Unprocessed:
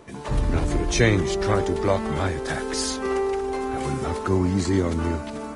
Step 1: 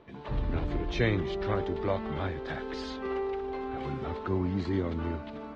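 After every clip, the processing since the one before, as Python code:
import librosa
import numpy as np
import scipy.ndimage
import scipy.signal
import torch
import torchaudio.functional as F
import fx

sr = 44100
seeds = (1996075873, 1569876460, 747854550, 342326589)

y = scipy.signal.sosfilt(scipy.signal.cheby1(3, 1.0, 3700.0, 'lowpass', fs=sr, output='sos'), x)
y = F.gain(torch.from_numpy(y), -8.0).numpy()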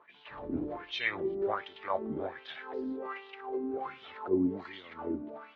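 y = fx.wah_lfo(x, sr, hz=1.3, low_hz=270.0, high_hz=3300.0, q=3.9)
y = fx.attack_slew(y, sr, db_per_s=320.0)
y = F.gain(torch.from_numpy(y), 7.0).numpy()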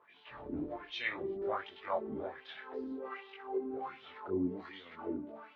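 y = fx.detune_double(x, sr, cents=20)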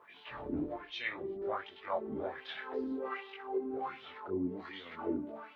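y = fx.rider(x, sr, range_db=5, speed_s=0.5)
y = F.gain(torch.from_numpy(y), 1.0).numpy()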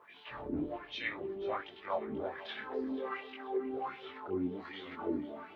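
y = fx.echo_feedback(x, sr, ms=486, feedback_pct=48, wet_db=-16.5)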